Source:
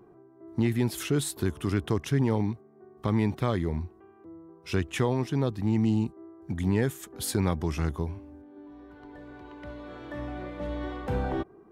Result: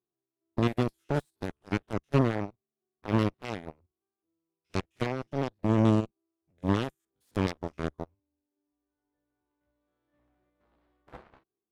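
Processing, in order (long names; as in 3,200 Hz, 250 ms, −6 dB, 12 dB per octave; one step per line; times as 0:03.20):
spectrum averaged block by block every 50 ms
harmonic generator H 5 −11 dB, 7 −7 dB, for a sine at −12.5 dBFS
expander for the loud parts 2.5 to 1, over −44 dBFS
level +2 dB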